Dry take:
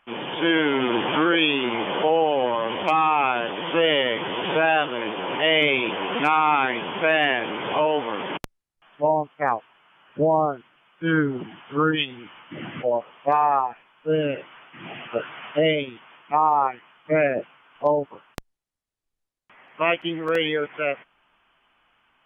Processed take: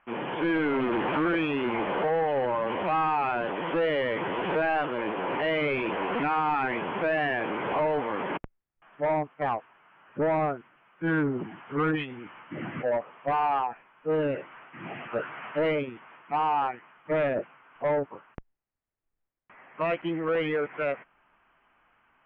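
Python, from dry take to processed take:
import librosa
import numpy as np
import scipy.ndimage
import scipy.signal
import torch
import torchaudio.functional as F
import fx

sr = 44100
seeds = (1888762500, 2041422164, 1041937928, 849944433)

y = 10.0 ** (-21.5 / 20.0) * np.tanh(x / 10.0 ** (-21.5 / 20.0))
y = scipy.signal.sosfilt(scipy.signal.butter(4, 2300.0, 'lowpass', fs=sr, output='sos'), y)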